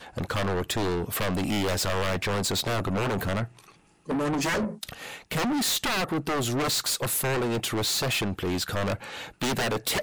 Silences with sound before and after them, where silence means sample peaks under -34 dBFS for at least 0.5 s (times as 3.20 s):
3.45–4.09 s